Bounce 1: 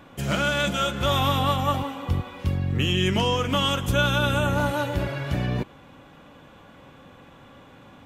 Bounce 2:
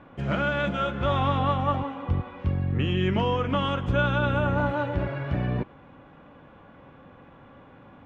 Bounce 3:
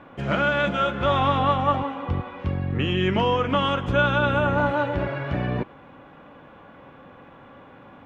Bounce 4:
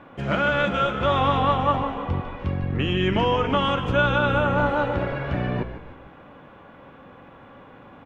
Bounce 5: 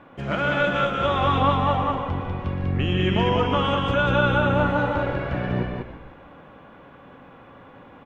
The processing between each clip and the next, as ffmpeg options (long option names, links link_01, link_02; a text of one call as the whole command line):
ffmpeg -i in.wav -af "lowpass=2000,volume=-1dB" out.wav
ffmpeg -i in.wav -af "lowshelf=frequency=190:gain=-7.5,volume=5dB" out.wav
ffmpeg -i in.wav -filter_complex "[0:a]asplit=6[link_01][link_02][link_03][link_04][link_05][link_06];[link_02]adelay=150,afreqshift=-65,volume=-11dB[link_07];[link_03]adelay=300,afreqshift=-130,volume=-17.6dB[link_08];[link_04]adelay=450,afreqshift=-195,volume=-24.1dB[link_09];[link_05]adelay=600,afreqshift=-260,volume=-30.7dB[link_10];[link_06]adelay=750,afreqshift=-325,volume=-37.2dB[link_11];[link_01][link_07][link_08][link_09][link_10][link_11]amix=inputs=6:normalize=0" out.wav
ffmpeg -i in.wav -af "aecho=1:1:119.5|195.3:0.282|0.708,volume=-2dB" out.wav